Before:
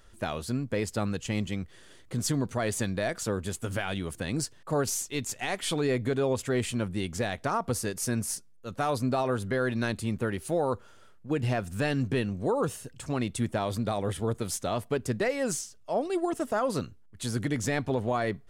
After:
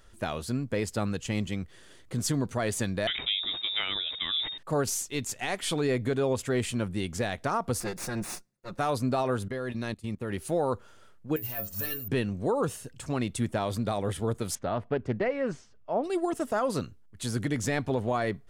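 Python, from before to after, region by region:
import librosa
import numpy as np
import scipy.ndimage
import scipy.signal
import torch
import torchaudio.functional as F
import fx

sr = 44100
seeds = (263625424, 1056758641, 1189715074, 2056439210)

y = fx.chain(x, sr, fx.freq_invert(carrier_hz=3700),
    fx.sustainer(db_per_s=69.0), at=(3.07, 4.58))
y = fx.chain(y, sr, fx.lower_of_two(delay_ms=5.6),
    fx.high_shelf(hz=7100.0, db=-6.5),
    fx.notch(hz=3100.0, q=6.2), at=(7.8, 8.79))
y = fx.chain(y, sr, fx.level_steps(step_db=16),
    fx.notch(hz=1500.0, q=8.8),
    fx.upward_expand(threshold_db=-49.0, expansion=1.5), at=(9.48, 10.3))
y = fx.chain(y, sr, fx.high_shelf(hz=4500.0, db=9.5),
    fx.stiff_resonator(f0_hz=100.0, decay_s=0.3, stiffness=0.008),
    fx.resample_bad(factor=3, down='none', up='zero_stuff'), at=(11.36, 12.08))
y = fx.chain(y, sr, fx.lowpass(hz=2100.0, slope=12),
    fx.doppler_dist(depth_ms=0.25), at=(14.55, 16.04))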